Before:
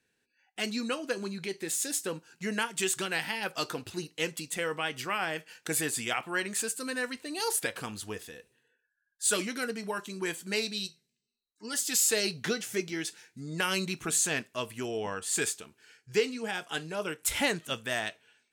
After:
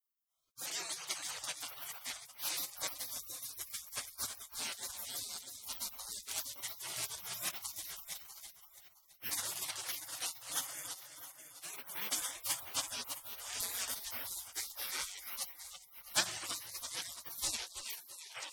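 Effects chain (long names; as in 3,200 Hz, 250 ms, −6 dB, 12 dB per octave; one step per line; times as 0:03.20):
turntable brake at the end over 1.30 s
echo with a time of its own for lows and highs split 2,800 Hz, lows 331 ms, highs 648 ms, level −8 dB
gate on every frequency bin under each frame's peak −30 dB weak
level +10.5 dB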